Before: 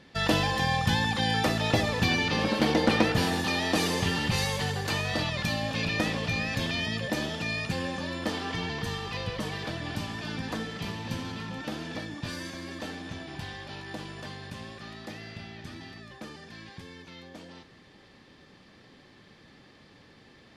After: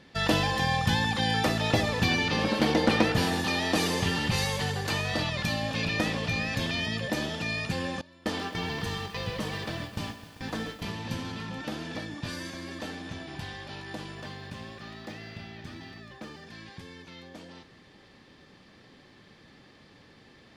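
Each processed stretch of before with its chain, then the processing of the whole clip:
0:08.01–0:10.82: noise gate with hold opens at −23 dBFS, closes at −30 dBFS + feedback echo at a low word length 131 ms, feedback 80%, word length 8 bits, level −13 dB
0:14.15–0:16.47: running median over 3 samples + high-shelf EQ 8,000 Hz −4.5 dB
whole clip: no processing

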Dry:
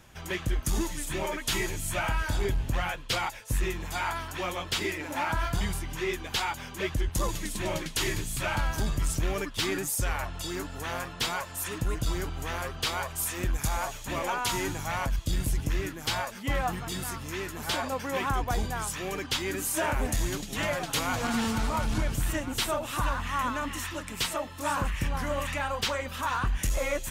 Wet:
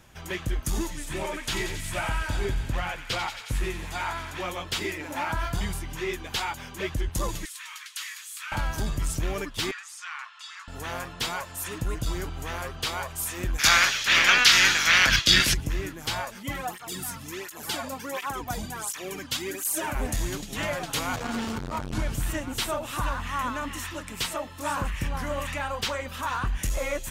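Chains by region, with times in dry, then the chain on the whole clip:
0:00.90–0:04.47: high-shelf EQ 9,500 Hz −9.5 dB + delay with a high-pass on its return 90 ms, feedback 78%, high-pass 1,700 Hz, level −8.5 dB
0:07.45–0:08.52: Butterworth high-pass 1,100 Hz 48 dB per octave + downward compressor 1.5 to 1, threshold −41 dBFS
0:09.71–0:10.68: elliptic high-pass filter 1,100 Hz, stop band 80 dB + high-frequency loss of the air 100 metres
0:13.58–0:15.53: ceiling on every frequency bin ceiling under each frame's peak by 16 dB + flat-topped bell 2,800 Hz +15.5 dB 2.5 octaves
0:16.43–0:19.95: high-shelf EQ 5,800 Hz +8 dB + through-zero flanger with one copy inverted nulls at 1.4 Hz, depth 2.8 ms
0:21.16–0:21.93: parametric band 11,000 Hz −4.5 dB 1.1 octaves + saturating transformer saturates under 330 Hz
whole clip: no processing

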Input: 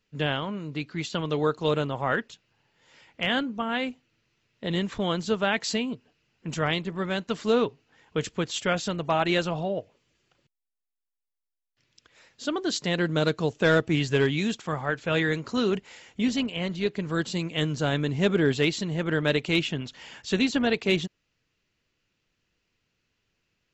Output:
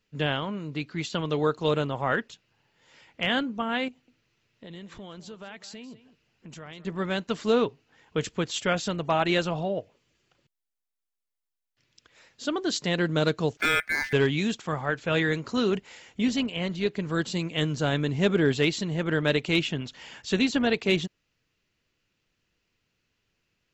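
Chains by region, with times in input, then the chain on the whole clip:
0:03.88–0:06.85: downward compressor 3 to 1, threshold −45 dBFS + single-tap delay 200 ms −15.5 dB
0:13.57–0:14.13: ring modulation 1,900 Hz + linearly interpolated sample-rate reduction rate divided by 4×
whole clip: no processing

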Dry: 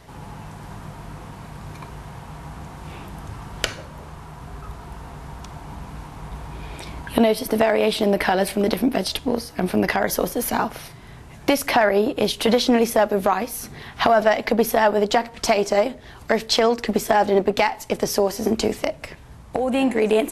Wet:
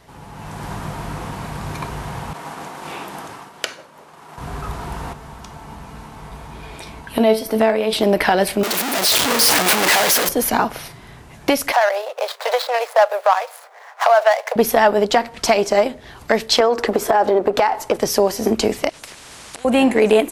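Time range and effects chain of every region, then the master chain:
0:02.33–0:04.38: downward expander −36 dBFS + high-pass filter 280 Hz
0:05.13–0:07.93: hard clipping −2.5 dBFS + tuned comb filter 220 Hz, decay 0.32 s, mix 70%
0:08.63–0:10.29: sign of each sample alone + high-pass filter 610 Hz 6 dB per octave
0:11.72–0:14.56: running median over 15 samples + Butterworth high-pass 540 Hz 48 dB per octave + one half of a high-frequency compander decoder only
0:16.60–0:17.97: flat-topped bell 720 Hz +8.5 dB 2.6 octaves + downward compressor 4 to 1, threshold −15 dBFS
0:18.89–0:19.65: low-pass filter 10,000 Hz 24 dB per octave + downward compressor, threshold −31 dBFS + every bin compressed towards the loudest bin 4 to 1
whole clip: low-shelf EQ 190 Hz −4.5 dB; automatic gain control; level −1 dB

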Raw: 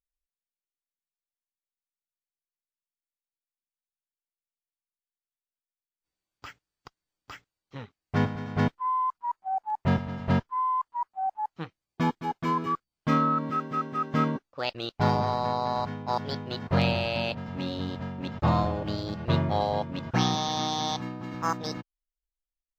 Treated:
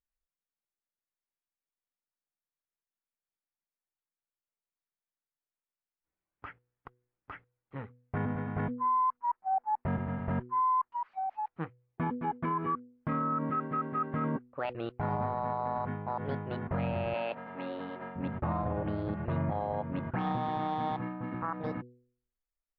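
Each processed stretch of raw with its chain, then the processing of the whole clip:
0:10.92–0:11.48: spike at every zero crossing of −39.5 dBFS + downward compressor, threshold −31 dBFS
0:17.14–0:18.16: high-pass filter 380 Hz + high-shelf EQ 4,600 Hz +6.5 dB
whole clip: low-pass filter 2,100 Hz 24 dB per octave; hum removal 122.9 Hz, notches 4; brickwall limiter −23.5 dBFS

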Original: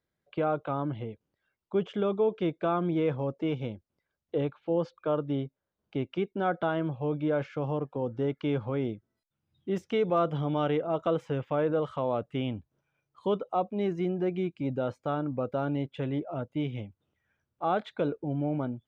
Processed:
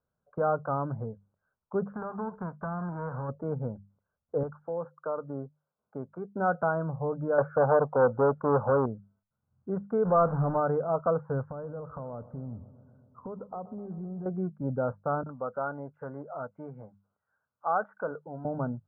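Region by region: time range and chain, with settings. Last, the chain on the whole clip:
0:01.91–0:03.28: spectral envelope flattened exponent 0.3 + low-pass filter 1,900 Hz 6 dB per octave + downward compressor, threshold −31 dBFS
0:04.43–0:06.29: high-pass filter 330 Hz 6 dB per octave + downward compressor 2.5 to 1, threshold −30 dBFS
0:07.38–0:08.86: parametric band 670 Hz +14 dB 1.7 octaves + saturating transformer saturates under 720 Hz
0:10.05–0:10.60: converter with a step at zero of −31.5 dBFS + one half of a high-frequency compander decoder only
0:11.47–0:14.26: low-shelf EQ 390 Hz +11.5 dB + downward compressor 4 to 1, threshold −39 dBFS + feedback echo with a low-pass in the loop 127 ms, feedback 76%, level −17 dB
0:15.23–0:18.45: spectral tilt +4.5 dB per octave + multiband delay without the direct sound highs, lows 30 ms, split 2,400 Hz
whole clip: Chebyshev low-pass filter 1,500 Hz, order 6; parametric band 330 Hz −14.5 dB 0.4 octaves; mains-hum notches 50/100/150/200 Hz; level +3.5 dB

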